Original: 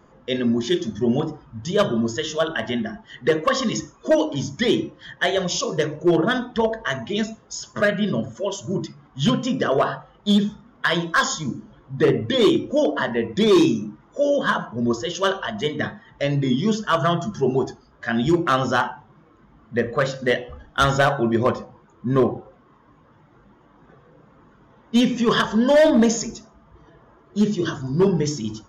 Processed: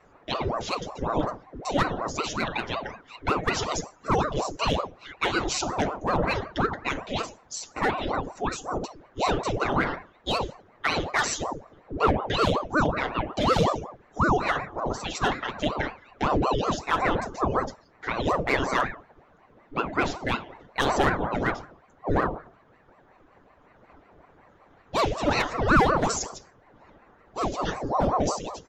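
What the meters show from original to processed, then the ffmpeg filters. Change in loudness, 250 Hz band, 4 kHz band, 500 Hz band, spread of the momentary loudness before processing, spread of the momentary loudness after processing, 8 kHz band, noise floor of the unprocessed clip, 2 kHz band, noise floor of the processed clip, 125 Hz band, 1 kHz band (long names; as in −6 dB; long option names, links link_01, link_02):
−5.5 dB, −9.5 dB, −6.0 dB, −7.5 dB, 11 LU, 10 LU, −3.5 dB, −54 dBFS, −3.0 dB, −58 dBFS, −5.0 dB, +0.5 dB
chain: -filter_complex "[0:a]aecho=1:1:6.9:0.85,asplit=2[link_01][link_02];[link_02]alimiter=limit=-12dB:level=0:latency=1,volume=-2dB[link_03];[link_01][link_03]amix=inputs=2:normalize=0,aeval=exprs='val(0)*sin(2*PI*530*n/s+530*0.75/5.4*sin(2*PI*5.4*n/s))':channel_layout=same,volume=-8dB"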